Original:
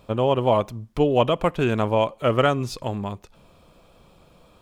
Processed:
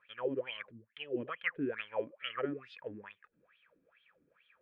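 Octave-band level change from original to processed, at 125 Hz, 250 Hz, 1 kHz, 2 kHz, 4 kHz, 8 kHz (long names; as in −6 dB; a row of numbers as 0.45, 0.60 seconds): −27.5 dB, −15.5 dB, −22.0 dB, −7.5 dB, −12.5 dB, below −35 dB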